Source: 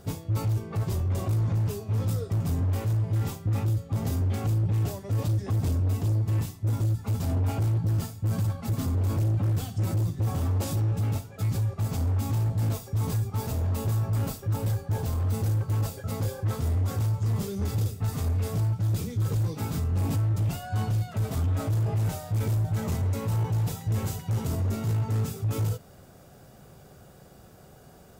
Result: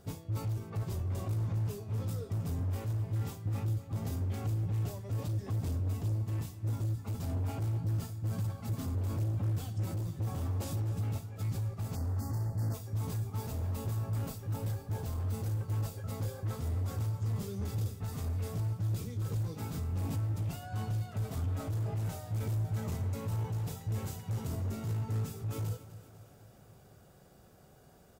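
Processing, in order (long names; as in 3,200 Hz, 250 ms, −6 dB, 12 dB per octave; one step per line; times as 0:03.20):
time-frequency box erased 0:11.95–0:12.74, 2,100–4,200 Hz
repeating echo 250 ms, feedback 58%, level −15 dB
level −8 dB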